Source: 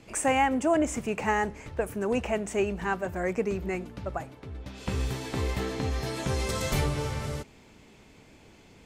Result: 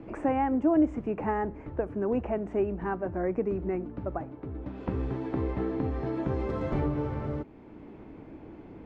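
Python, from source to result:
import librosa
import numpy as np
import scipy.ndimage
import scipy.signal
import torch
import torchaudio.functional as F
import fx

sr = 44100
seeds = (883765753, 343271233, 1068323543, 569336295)

y = scipy.signal.sosfilt(scipy.signal.butter(2, 1200.0, 'lowpass', fs=sr, output='sos'), x)
y = fx.peak_eq(y, sr, hz=310.0, db=9.5, octaves=0.41)
y = fx.band_squash(y, sr, depth_pct=40)
y = y * librosa.db_to_amplitude(-2.0)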